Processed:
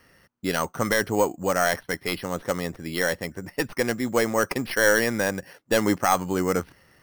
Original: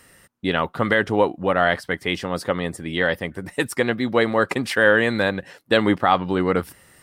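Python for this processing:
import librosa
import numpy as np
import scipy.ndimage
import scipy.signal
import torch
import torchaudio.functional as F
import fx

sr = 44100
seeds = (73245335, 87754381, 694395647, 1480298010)

y = fx.tracing_dist(x, sr, depth_ms=0.091)
y = np.repeat(scipy.signal.resample_poly(y, 1, 6), 6)[:len(y)]
y = y * librosa.db_to_amplitude(-3.5)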